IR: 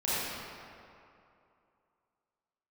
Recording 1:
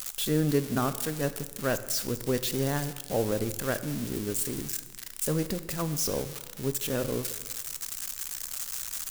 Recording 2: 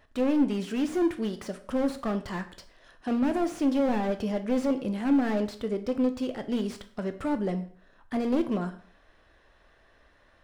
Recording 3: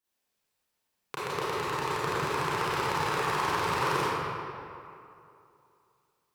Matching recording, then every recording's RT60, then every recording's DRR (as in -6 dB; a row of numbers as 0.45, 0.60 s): 3; 1.3, 0.55, 2.6 s; 11.0, 8.0, -11.5 dB